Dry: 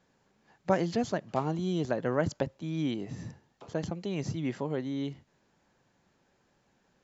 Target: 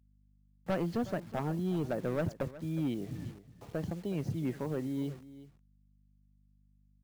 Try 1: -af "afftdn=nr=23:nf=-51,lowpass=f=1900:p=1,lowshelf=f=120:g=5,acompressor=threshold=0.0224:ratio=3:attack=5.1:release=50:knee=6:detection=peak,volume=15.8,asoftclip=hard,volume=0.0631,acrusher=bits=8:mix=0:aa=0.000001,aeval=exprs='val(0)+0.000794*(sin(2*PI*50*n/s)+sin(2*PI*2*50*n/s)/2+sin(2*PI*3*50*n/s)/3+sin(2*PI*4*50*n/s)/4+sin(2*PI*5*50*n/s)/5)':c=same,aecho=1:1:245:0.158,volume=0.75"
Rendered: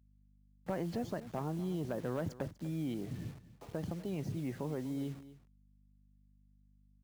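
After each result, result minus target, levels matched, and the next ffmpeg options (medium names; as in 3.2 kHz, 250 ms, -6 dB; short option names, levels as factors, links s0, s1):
compression: peak gain reduction +10 dB; echo 121 ms early
-af "afftdn=nr=23:nf=-51,lowpass=f=1900:p=1,lowshelf=f=120:g=5,volume=15.8,asoftclip=hard,volume=0.0631,acrusher=bits=8:mix=0:aa=0.000001,aeval=exprs='val(0)+0.000794*(sin(2*PI*50*n/s)+sin(2*PI*2*50*n/s)/2+sin(2*PI*3*50*n/s)/3+sin(2*PI*4*50*n/s)/4+sin(2*PI*5*50*n/s)/5)':c=same,aecho=1:1:245:0.158,volume=0.75"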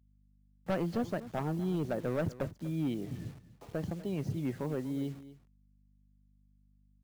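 echo 121 ms early
-af "afftdn=nr=23:nf=-51,lowpass=f=1900:p=1,lowshelf=f=120:g=5,volume=15.8,asoftclip=hard,volume=0.0631,acrusher=bits=8:mix=0:aa=0.000001,aeval=exprs='val(0)+0.000794*(sin(2*PI*50*n/s)+sin(2*PI*2*50*n/s)/2+sin(2*PI*3*50*n/s)/3+sin(2*PI*4*50*n/s)/4+sin(2*PI*5*50*n/s)/5)':c=same,aecho=1:1:366:0.158,volume=0.75"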